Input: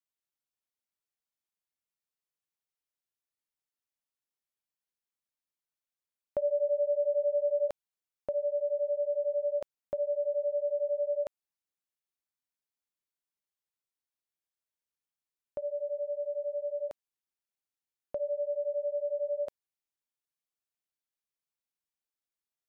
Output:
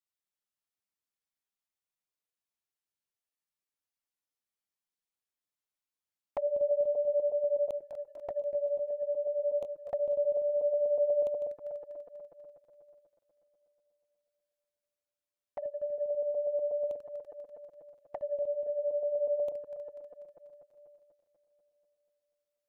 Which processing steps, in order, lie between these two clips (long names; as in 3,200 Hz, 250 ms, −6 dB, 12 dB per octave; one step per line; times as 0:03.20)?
feedback delay that plays each chunk backwards 122 ms, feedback 78%, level −9 dB
flanger swept by the level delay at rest 10.3 ms, full sweep at −28.5 dBFS